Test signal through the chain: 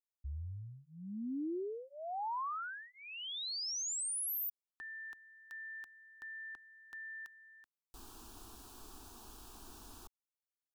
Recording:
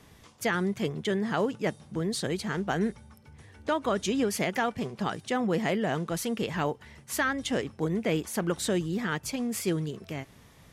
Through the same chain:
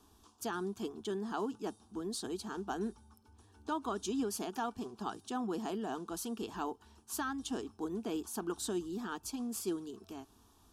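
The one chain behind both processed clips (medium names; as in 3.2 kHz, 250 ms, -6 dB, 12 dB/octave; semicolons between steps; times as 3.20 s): static phaser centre 550 Hz, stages 6; trim -5.5 dB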